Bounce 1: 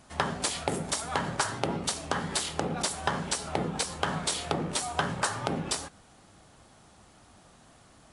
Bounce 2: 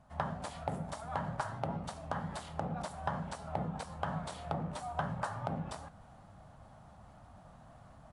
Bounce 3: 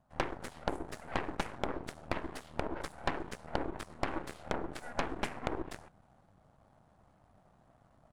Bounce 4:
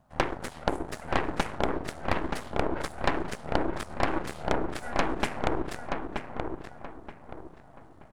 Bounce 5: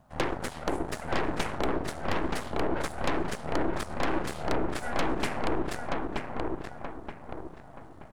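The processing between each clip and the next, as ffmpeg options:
-af "firequalizer=gain_entry='entry(150,0);entry(370,-15);entry(620,-1);entry(2300,-14);entry(5500,-19)':delay=0.05:min_phase=1,areverse,acompressor=mode=upward:threshold=-44dB:ratio=2.5,areverse,volume=-2.5dB"
-af "aeval=exprs='0.126*(cos(1*acos(clip(val(0)/0.126,-1,1)))-cos(1*PI/2))+0.00316*(cos(3*acos(clip(val(0)/0.126,-1,1)))-cos(3*PI/2))+0.0251*(cos(4*acos(clip(val(0)/0.126,-1,1)))-cos(4*PI/2))+0.0224*(cos(7*acos(clip(val(0)/0.126,-1,1)))-cos(7*PI/2))+0.02*(cos(8*acos(clip(val(0)/0.126,-1,1)))-cos(8*PI/2))':c=same,equalizer=f=360:t=o:w=1.8:g=4,volume=-1dB"
-filter_complex "[0:a]asplit=2[a][b];[b]adelay=927,lowpass=f=2.3k:p=1,volume=-4.5dB,asplit=2[c][d];[d]adelay=927,lowpass=f=2.3k:p=1,volume=0.34,asplit=2[e][f];[f]adelay=927,lowpass=f=2.3k:p=1,volume=0.34,asplit=2[g][h];[h]adelay=927,lowpass=f=2.3k:p=1,volume=0.34[i];[a][c][e][g][i]amix=inputs=5:normalize=0,volume=7dB"
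-af "asoftclip=type=tanh:threshold=-22.5dB,volume=4dB"

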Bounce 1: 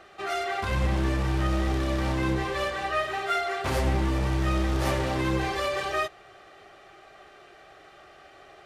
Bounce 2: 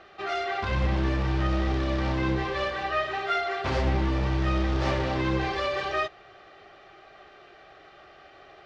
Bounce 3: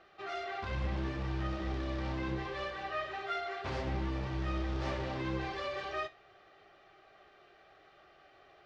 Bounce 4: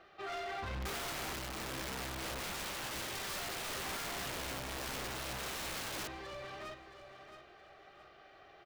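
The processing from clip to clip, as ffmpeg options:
-af "lowpass=f=5.4k:w=0.5412,lowpass=f=5.4k:w=1.3066"
-af "flanger=delay=5.8:depth=7.4:regen=-72:speed=0.74:shape=sinusoidal,volume=-5.5dB"
-af "asoftclip=type=hard:threshold=-38.5dB,aecho=1:1:670|1340|2010|2680:0.501|0.155|0.0482|0.0149,aeval=exprs='(mod(75*val(0)+1,2)-1)/75':c=same,volume=1dB"

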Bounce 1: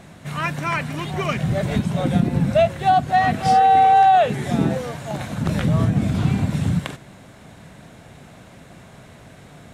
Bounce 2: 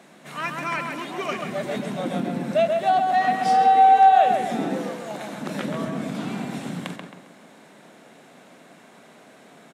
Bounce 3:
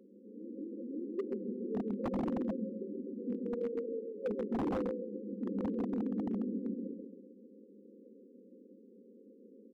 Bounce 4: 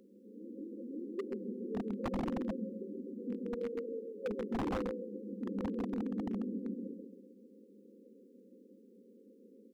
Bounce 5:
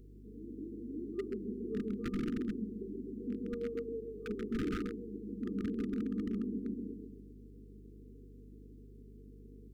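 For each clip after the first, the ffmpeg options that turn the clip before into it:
-filter_complex "[0:a]highpass=f=220:w=0.5412,highpass=f=220:w=1.3066,asplit=2[a][b];[b]adelay=134,lowpass=f=2.6k:p=1,volume=-3.5dB,asplit=2[c][d];[d]adelay=134,lowpass=f=2.6k:p=1,volume=0.44,asplit=2[e][f];[f]adelay=134,lowpass=f=2.6k:p=1,volume=0.44,asplit=2[g][h];[h]adelay=134,lowpass=f=2.6k:p=1,volume=0.44,asplit=2[i][j];[j]adelay=134,lowpass=f=2.6k:p=1,volume=0.44,asplit=2[k][l];[l]adelay=134,lowpass=f=2.6k:p=1,volume=0.44[m];[a][c][e][g][i][k][m]amix=inputs=7:normalize=0,volume=-4dB"
-af "afftfilt=real='re*between(b*sr/4096,190,540)':imag='im*between(b*sr/4096,190,540)':win_size=4096:overlap=0.75,aeval=exprs='0.0596*(abs(mod(val(0)/0.0596+3,4)-2)-1)':c=same,volume=-3.5dB"
-af "equalizer=f=350:w=0.31:g=-9.5,volume=7dB"
-af "aeval=exprs='val(0)+0.002*(sin(2*PI*50*n/s)+sin(2*PI*2*50*n/s)/2+sin(2*PI*3*50*n/s)/3+sin(2*PI*4*50*n/s)/4+sin(2*PI*5*50*n/s)/5)':c=same,afftfilt=real='re*(1-between(b*sr/4096,480,1200))':imag='im*(1-between(b*sr/4096,480,1200))':win_size=4096:overlap=0.75,volume=1dB"

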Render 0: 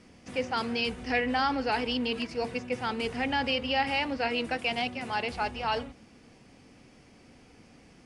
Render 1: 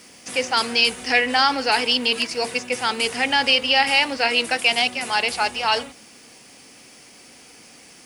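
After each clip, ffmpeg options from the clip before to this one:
-af "aemphasis=mode=production:type=riaa,volume=8.5dB"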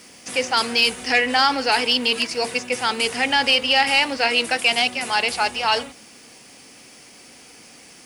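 -af "asoftclip=type=tanh:threshold=-6dB,volume=1dB"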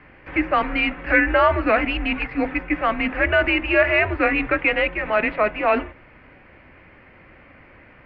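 -af "highpass=f=220:t=q:w=0.5412,highpass=f=220:t=q:w=1.307,lowpass=f=2.5k:t=q:w=0.5176,lowpass=f=2.5k:t=q:w=0.7071,lowpass=f=2.5k:t=q:w=1.932,afreqshift=-200,volume=2.5dB"

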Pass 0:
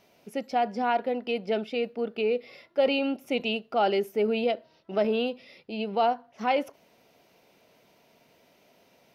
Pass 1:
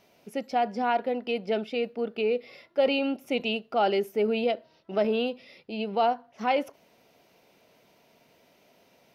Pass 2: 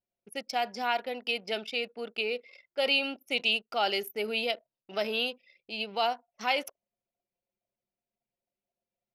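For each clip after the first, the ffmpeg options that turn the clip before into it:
-af anull
-af "anlmdn=0.0398,lowshelf=f=470:g=-7.5,crystalizer=i=7.5:c=0,volume=-5dB"

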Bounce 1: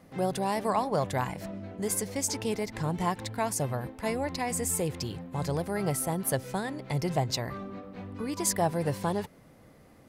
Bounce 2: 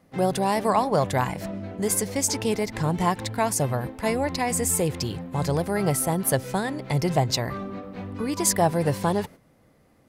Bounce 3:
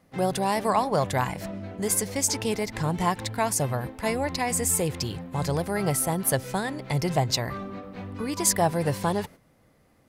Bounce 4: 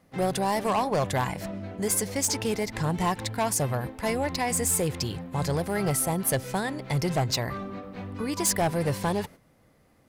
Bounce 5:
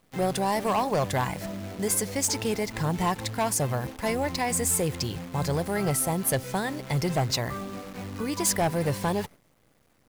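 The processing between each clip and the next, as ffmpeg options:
-af "agate=range=-10dB:threshold=-46dB:ratio=16:detection=peak,volume=6dB"
-af "equalizer=f=300:w=0.41:g=-3"
-af "asoftclip=type=hard:threshold=-19.5dB"
-af "acrusher=bits=8:dc=4:mix=0:aa=0.000001"

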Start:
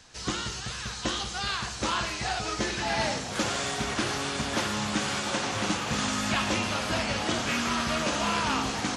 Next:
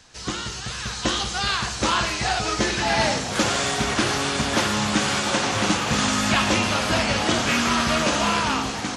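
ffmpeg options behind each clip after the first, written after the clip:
-af "dynaudnorm=f=140:g=11:m=5dB,volume=2dB"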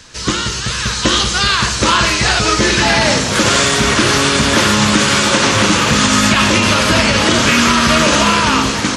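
-af "equalizer=f=760:w=6.9:g=-13,alimiter=level_in=13dB:limit=-1dB:release=50:level=0:latency=1,volume=-1dB"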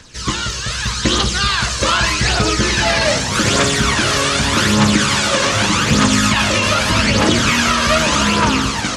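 -af "aphaser=in_gain=1:out_gain=1:delay=1.9:decay=0.49:speed=0.83:type=triangular,volume=-4dB"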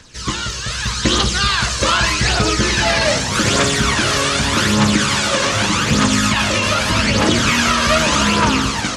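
-af "dynaudnorm=f=590:g=3:m=11.5dB,volume=-2dB"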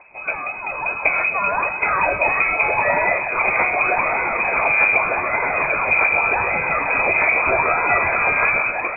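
-af "lowpass=f=2.2k:t=q:w=0.5098,lowpass=f=2.2k:t=q:w=0.6013,lowpass=f=2.2k:t=q:w=0.9,lowpass=f=2.2k:t=q:w=2.563,afreqshift=-2600,equalizer=f=250:t=o:w=0.67:g=-4,equalizer=f=630:t=o:w=0.67:g=7,equalizer=f=1.6k:t=o:w=0.67:g=-7"

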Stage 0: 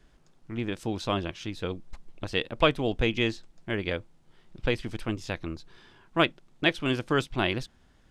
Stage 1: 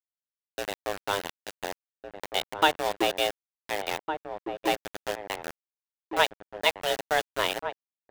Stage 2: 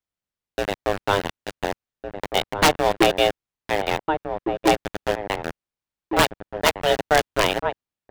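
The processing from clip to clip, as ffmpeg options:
-filter_complex "[0:a]afreqshift=300,aeval=exprs='val(0)*gte(abs(val(0)),0.0531)':c=same,asplit=2[a][b];[b]adelay=1458,volume=-7dB,highshelf=f=4k:g=-32.8[c];[a][c]amix=inputs=2:normalize=0"
-af "lowshelf=f=230:g=10,aeval=exprs='(mod(3.98*val(0)+1,2)-1)/3.98':c=same,highshelf=f=5.4k:g=-10.5,volume=7.5dB"

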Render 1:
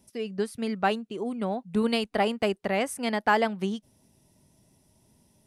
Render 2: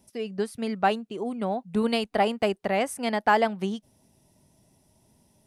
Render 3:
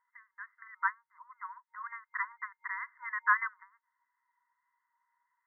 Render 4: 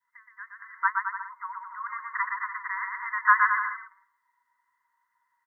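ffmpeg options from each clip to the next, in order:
-af "equalizer=f=730:w=2:g=3.5"
-af "afftfilt=real='re*between(b*sr/4096,930,2100)':imag='im*between(b*sr/4096,930,2100)':win_size=4096:overlap=0.75"
-af "adynamicequalizer=threshold=0.00631:dfrequency=1100:dqfactor=1.3:tfrequency=1100:tqfactor=1.3:attack=5:release=100:ratio=0.375:range=2.5:mode=boostabove:tftype=bell,aecho=1:1:120|216|292.8|354.2|403.4:0.631|0.398|0.251|0.158|0.1,volume=3dB"

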